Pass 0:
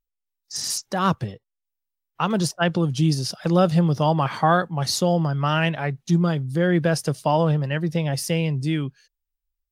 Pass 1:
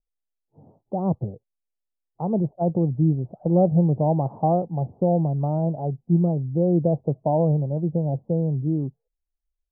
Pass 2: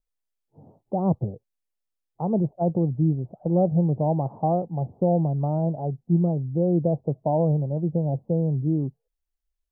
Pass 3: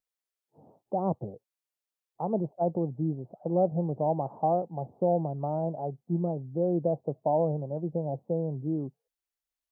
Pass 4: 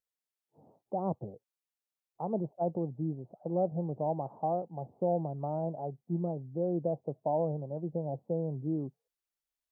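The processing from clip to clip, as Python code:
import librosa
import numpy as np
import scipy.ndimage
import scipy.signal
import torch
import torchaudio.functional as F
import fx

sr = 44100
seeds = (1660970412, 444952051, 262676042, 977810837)

y1 = scipy.signal.sosfilt(scipy.signal.butter(8, 800.0, 'lowpass', fs=sr, output='sos'), x)
y2 = fx.rider(y1, sr, range_db=10, speed_s=2.0)
y2 = F.gain(torch.from_numpy(y2), -1.5).numpy()
y3 = fx.highpass(y2, sr, hz=460.0, slope=6)
y4 = fx.rider(y3, sr, range_db=10, speed_s=2.0)
y4 = F.gain(torch.from_numpy(y4), -4.5).numpy()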